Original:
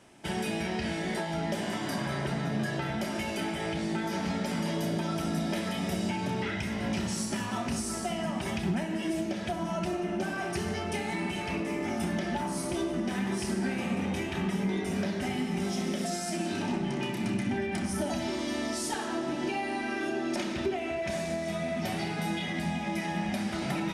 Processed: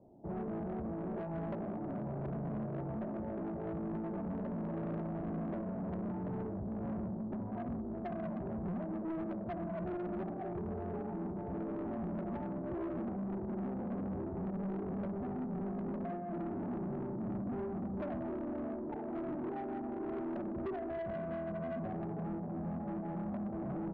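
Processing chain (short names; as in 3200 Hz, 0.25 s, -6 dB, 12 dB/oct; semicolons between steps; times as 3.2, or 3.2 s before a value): steep low-pass 760 Hz 36 dB/oct; soft clip -33.5 dBFS, distortion -10 dB; gain -1.5 dB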